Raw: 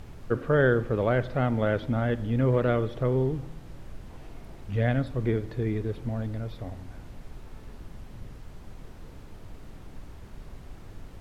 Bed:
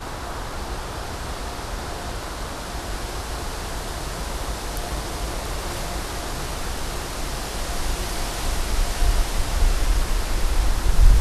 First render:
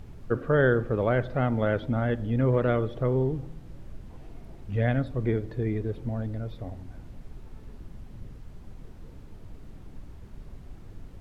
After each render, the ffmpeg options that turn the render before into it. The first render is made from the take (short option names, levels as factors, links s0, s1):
-af "afftdn=nr=6:nf=-46"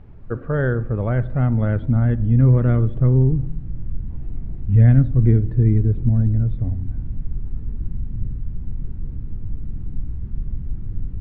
-af "lowpass=2100,asubboost=boost=8.5:cutoff=210"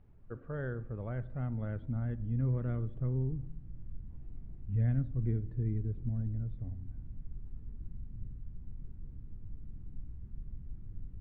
-af "volume=0.133"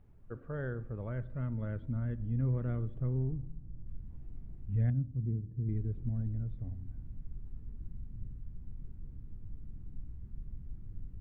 -filter_complex "[0:a]asettb=1/sr,asplit=3[s0][s1][s2];[s0]atrim=end=1.074[s3];[s1]atrim=start=1.07:end=2.21,asetpts=PTS-STARTPTS,afade=t=in:d=0.004:c=qsin,afade=t=out:st=1.136:d=0.004:c=qsin,asuperstop=centerf=760:order=4:qfactor=4.8[s4];[s2]atrim=start=2.206[s5];[s3][s4]acrossfade=d=0.004:c1=hsin:c2=qsin[s6];[s6][s5]acrossfade=d=0.004:c1=qsin:c2=hsin,asettb=1/sr,asplit=3[s7][s8][s9];[s7]atrim=end=3.174[s10];[s8]atrim=start=3.17:end=3.87,asetpts=PTS-STARTPTS,afade=t=in:d=0.004:c=qsin,afade=t=out:st=0.696:d=0.004:c=qsin,adynamicsmooth=sensitivity=7.5:basefreq=1200[s11];[s9]atrim=start=3.866[s12];[s10][s11]acrossfade=d=0.004:c1=hsin:c2=qsin[s13];[s13][s12]acrossfade=d=0.004:c1=qsin:c2=hsin,asettb=1/sr,asplit=3[s14][s15][s16];[s14]atrim=end=4.904[s17];[s15]atrim=start=4.9:end=5.69,asetpts=PTS-STARTPTS,afade=t=in:d=0.004:c=qsin,afade=t=out:st=0.786:d=0.004:c=qsin,bandpass=f=160:t=q:w=0.99[s18];[s16]atrim=start=5.686[s19];[s17][s18]acrossfade=d=0.004:c1=hsin:c2=qsin[s20];[s20][s19]acrossfade=d=0.004:c1=qsin:c2=hsin"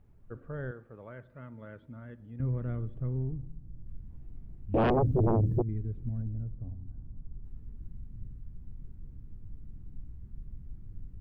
-filter_complex "[0:a]asettb=1/sr,asplit=3[s0][s1][s2];[s0]atrim=end=0.714[s3];[s1]atrim=start=0.71:end=2.4,asetpts=PTS-STARTPTS,afade=t=in:d=0.004:c=qsin,afade=t=out:st=1.686:d=0.004:c=qsin,highpass=f=520:p=1[s4];[s2]atrim=start=2.396[s5];[s3][s4]acrossfade=d=0.004:c1=hsin:c2=qsin[s6];[s6][s5]acrossfade=d=0.004:c1=qsin:c2=hsin,asettb=1/sr,asplit=3[s7][s8][s9];[s7]atrim=end=4.744[s10];[s8]atrim=start=4.74:end=5.62,asetpts=PTS-STARTPTS,afade=t=in:d=0.004:c=qsin,afade=t=out:st=0.876:d=0.004:c=qsin,aeval=exprs='0.0891*sin(PI/2*5.62*val(0)/0.0891)':c=same[s11];[s9]atrim=start=5.616[s12];[s10][s11]acrossfade=d=0.004:c1=hsin:c2=qsin[s13];[s13][s12]acrossfade=d=0.004:c1=qsin:c2=hsin,asettb=1/sr,asplit=3[s14][s15][s16];[s14]atrim=end=6.224[s17];[s15]atrim=start=6.22:end=7.44,asetpts=PTS-STARTPTS,afade=t=in:d=0.004:c=qsin,afade=t=out:st=1.216:d=0.004:c=qsin,lowpass=f=1300:w=0.5412,lowpass=f=1300:w=1.3066[s18];[s16]atrim=start=7.436[s19];[s17][s18]acrossfade=d=0.004:c1=hsin:c2=qsin[s20];[s20][s19]acrossfade=d=0.004:c1=qsin:c2=hsin"